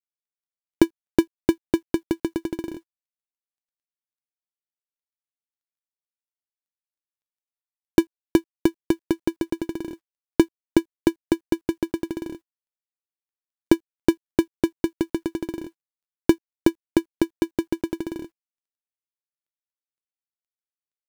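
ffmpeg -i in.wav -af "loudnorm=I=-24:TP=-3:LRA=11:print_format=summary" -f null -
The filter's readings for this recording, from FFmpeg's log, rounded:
Input Integrated:    -25.5 LUFS
Input True Peak:      -1.7 dBTP
Input LRA:             6.1 LU
Input Threshold:     -36.0 LUFS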